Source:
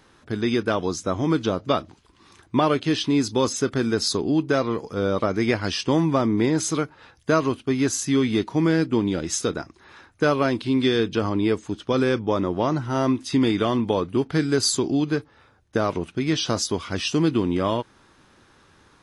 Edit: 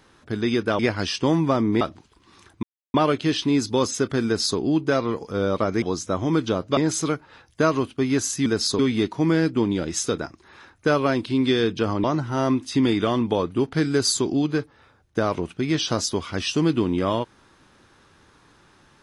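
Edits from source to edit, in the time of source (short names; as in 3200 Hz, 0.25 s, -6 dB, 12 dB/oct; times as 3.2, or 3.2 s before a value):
0.79–1.74 swap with 5.44–6.46
2.56 insert silence 0.31 s
3.87–4.2 copy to 8.15
11.4–12.62 cut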